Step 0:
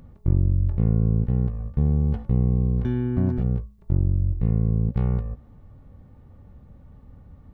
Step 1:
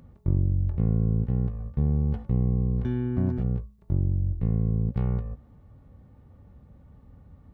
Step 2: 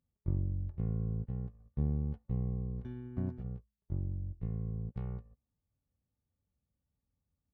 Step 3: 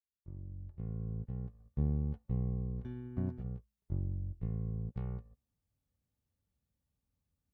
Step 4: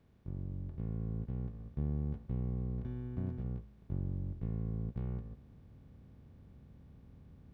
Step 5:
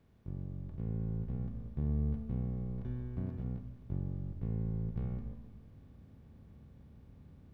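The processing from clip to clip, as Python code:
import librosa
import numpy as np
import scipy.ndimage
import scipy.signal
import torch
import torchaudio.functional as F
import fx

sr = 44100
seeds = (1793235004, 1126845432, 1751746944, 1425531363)

y1 = scipy.signal.sosfilt(scipy.signal.butter(2, 40.0, 'highpass', fs=sr, output='sos'), x)
y1 = y1 * librosa.db_to_amplitude(-3.0)
y2 = fx.upward_expand(y1, sr, threshold_db=-39.0, expansion=2.5)
y2 = y2 * librosa.db_to_amplitude(-5.0)
y3 = fx.fade_in_head(y2, sr, length_s=1.75)
y4 = fx.bin_compress(y3, sr, power=0.4)
y4 = y4 * librosa.db_to_amplitude(-4.5)
y5 = fx.rev_schroeder(y4, sr, rt60_s=1.5, comb_ms=28, drr_db=7.0)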